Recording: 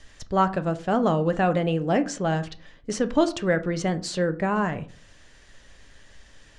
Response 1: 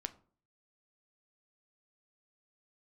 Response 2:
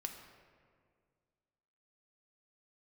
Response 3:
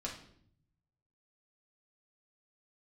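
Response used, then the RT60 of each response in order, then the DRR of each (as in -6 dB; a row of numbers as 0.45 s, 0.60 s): 1; 0.45 s, 2.0 s, 0.65 s; 10.0 dB, 3.5 dB, -3.0 dB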